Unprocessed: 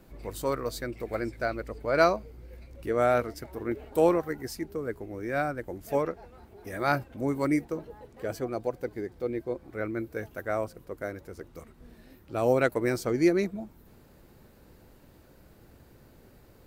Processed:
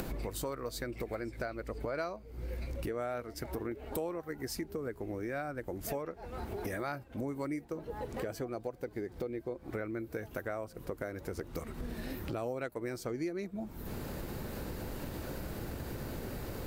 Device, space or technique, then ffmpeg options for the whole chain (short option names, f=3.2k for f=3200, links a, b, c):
upward and downward compression: -af "acompressor=mode=upward:threshold=-27dB:ratio=2.5,acompressor=threshold=-37dB:ratio=6,volume=2dB"